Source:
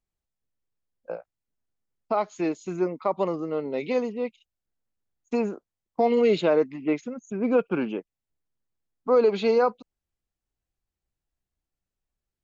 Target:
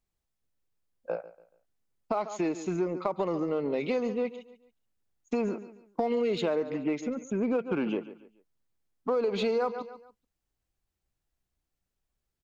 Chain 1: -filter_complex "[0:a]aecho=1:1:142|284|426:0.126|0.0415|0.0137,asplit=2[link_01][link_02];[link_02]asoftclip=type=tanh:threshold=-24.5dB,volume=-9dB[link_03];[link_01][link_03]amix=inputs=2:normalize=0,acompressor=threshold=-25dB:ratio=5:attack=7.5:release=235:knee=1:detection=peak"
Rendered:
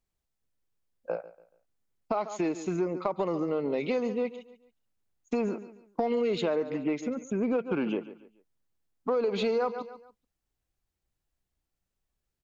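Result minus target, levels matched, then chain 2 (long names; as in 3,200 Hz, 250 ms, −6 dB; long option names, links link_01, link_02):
soft clipping: distortion −4 dB
-filter_complex "[0:a]aecho=1:1:142|284|426:0.126|0.0415|0.0137,asplit=2[link_01][link_02];[link_02]asoftclip=type=tanh:threshold=-32dB,volume=-9dB[link_03];[link_01][link_03]amix=inputs=2:normalize=0,acompressor=threshold=-25dB:ratio=5:attack=7.5:release=235:knee=1:detection=peak"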